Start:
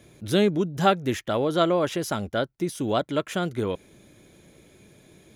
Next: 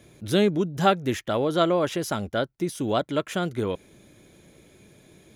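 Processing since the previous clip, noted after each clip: no audible change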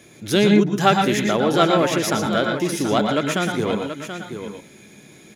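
in parallel at -9.5 dB: overload inside the chain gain 22.5 dB; on the sum: delay 731 ms -9.5 dB; reverberation RT60 0.20 s, pre-delay 108 ms, DRR 3 dB; trim +4.5 dB

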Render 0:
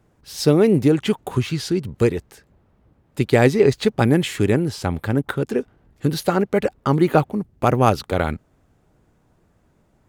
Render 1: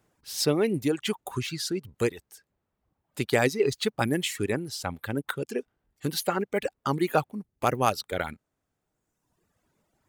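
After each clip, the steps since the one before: reverb removal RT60 1.4 s; tilt EQ +2 dB/octave; trim -5.5 dB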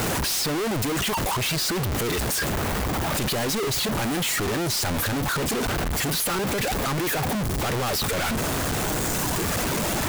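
one-bit comparator; trim +5 dB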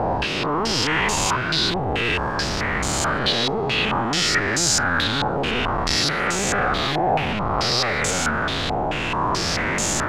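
reverse spectral sustain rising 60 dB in 2.26 s; modulation noise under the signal 12 dB; step-sequenced low-pass 4.6 Hz 780–7000 Hz; trim -3.5 dB

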